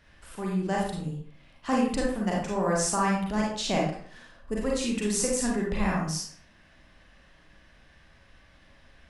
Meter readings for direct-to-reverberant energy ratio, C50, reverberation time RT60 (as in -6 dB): -3.0 dB, 1.5 dB, 0.55 s